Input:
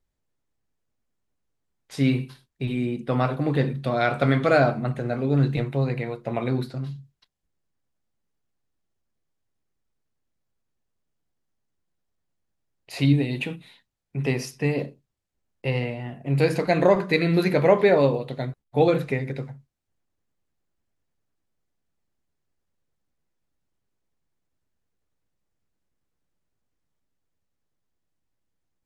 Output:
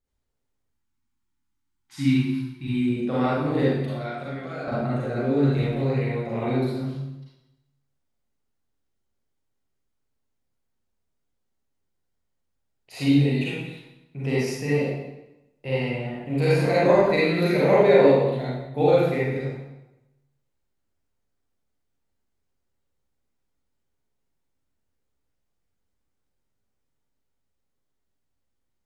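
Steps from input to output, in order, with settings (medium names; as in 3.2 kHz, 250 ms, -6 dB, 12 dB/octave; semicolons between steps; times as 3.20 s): 0.65–2.88 s: spectral selection erased 380–790 Hz; 3.81–4.68 s: compression 8:1, threshold -31 dBFS, peak gain reduction 17 dB; reverberation RT60 0.95 s, pre-delay 34 ms, DRR -8 dB; trim -7.5 dB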